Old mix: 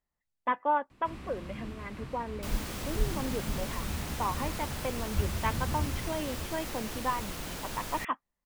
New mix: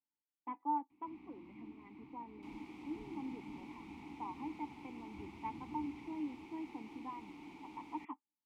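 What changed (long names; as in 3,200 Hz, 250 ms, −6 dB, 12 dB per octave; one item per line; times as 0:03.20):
speech: add high-shelf EQ 2,300 Hz −9.5 dB
master: add formant filter u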